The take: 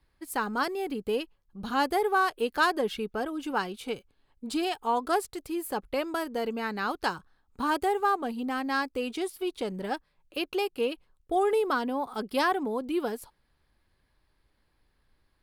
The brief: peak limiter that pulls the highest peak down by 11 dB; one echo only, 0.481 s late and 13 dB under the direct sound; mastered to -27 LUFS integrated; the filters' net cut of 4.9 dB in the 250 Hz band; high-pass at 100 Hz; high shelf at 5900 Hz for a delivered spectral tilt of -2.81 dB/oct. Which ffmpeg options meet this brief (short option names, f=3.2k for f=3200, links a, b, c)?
-af "highpass=100,equalizer=f=250:t=o:g=-6.5,highshelf=f=5.9k:g=3.5,alimiter=limit=-23dB:level=0:latency=1,aecho=1:1:481:0.224,volume=7dB"